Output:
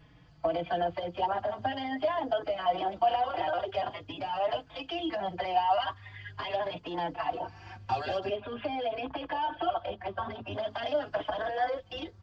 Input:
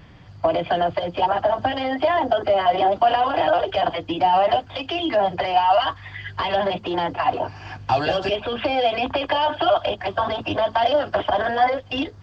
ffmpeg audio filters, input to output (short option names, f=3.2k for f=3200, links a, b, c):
-filter_complex "[0:a]asettb=1/sr,asplit=3[a][b][c];[a]atrim=end=8.204[d];[b]atrim=start=8.2:end=10.53,asetpts=PTS-STARTPTS,afade=t=in:d=0.004:c=qsin,afade=t=out:st=2.326:d=0.004:c=qsin,aemphasis=mode=reproduction:type=75kf[e];[c]atrim=start=10.526[f];[d][e]acrossfade=d=0.004:c1=hsin:c2=qsin[g];[g][f]acrossfade=d=0.004:c1=qsin:c2=hsin,asplit=2[h][i];[i]adelay=4.3,afreqshift=0.45[j];[h][j]amix=inputs=2:normalize=1,volume=-8dB"